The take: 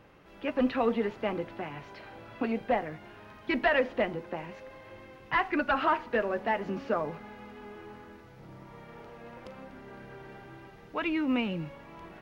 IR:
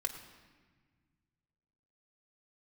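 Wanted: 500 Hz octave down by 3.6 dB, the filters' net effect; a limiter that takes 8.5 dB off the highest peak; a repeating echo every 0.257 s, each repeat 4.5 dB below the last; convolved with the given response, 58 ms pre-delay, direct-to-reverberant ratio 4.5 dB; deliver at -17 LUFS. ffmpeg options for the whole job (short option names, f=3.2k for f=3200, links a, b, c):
-filter_complex "[0:a]equalizer=f=500:t=o:g=-4.5,alimiter=level_in=0.5dB:limit=-24dB:level=0:latency=1,volume=-0.5dB,aecho=1:1:257|514|771|1028|1285|1542|1799|2056|2313:0.596|0.357|0.214|0.129|0.0772|0.0463|0.0278|0.0167|0.01,asplit=2[a][b];[1:a]atrim=start_sample=2205,adelay=58[c];[b][c]afir=irnorm=-1:irlink=0,volume=-6dB[d];[a][d]amix=inputs=2:normalize=0,volume=16.5dB"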